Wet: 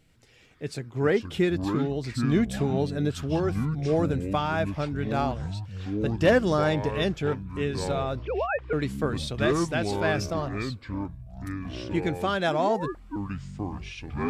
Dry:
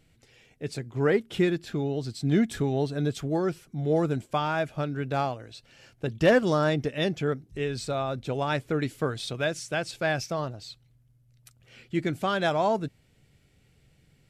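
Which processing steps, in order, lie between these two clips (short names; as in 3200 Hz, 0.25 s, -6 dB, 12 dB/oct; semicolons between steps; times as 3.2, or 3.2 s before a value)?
8.2–8.73 sine-wave speech; echoes that change speed 81 ms, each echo -7 st, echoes 3, each echo -6 dB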